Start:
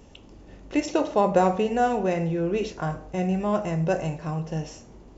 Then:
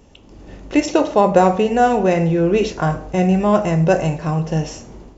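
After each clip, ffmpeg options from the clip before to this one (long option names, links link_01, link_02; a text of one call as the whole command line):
ffmpeg -i in.wav -af "dynaudnorm=framelen=240:gausssize=3:maxgain=9dB,volume=1dB" out.wav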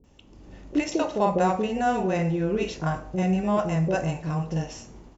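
ffmpeg -i in.wav -filter_complex "[0:a]acrossover=split=510[link_01][link_02];[link_02]adelay=40[link_03];[link_01][link_03]amix=inputs=2:normalize=0,volume=-7.5dB" out.wav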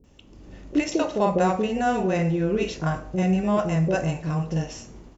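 ffmpeg -i in.wav -af "equalizer=frequency=860:width_type=o:width=0.52:gain=-3.5,volume=2dB" out.wav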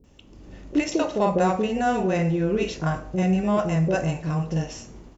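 ffmpeg -i in.wav -af "acontrast=38,volume=-5dB" out.wav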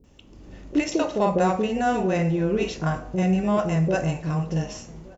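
ffmpeg -i in.wav -filter_complex "[0:a]asplit=2[link_01][link_02];[link_02]adelay=1166,volume=-24dB,highshelf=frequency=4000:gain=-26.2[link_03];[link_01][link_03]amix=inputs=2:normalize=0" out.wav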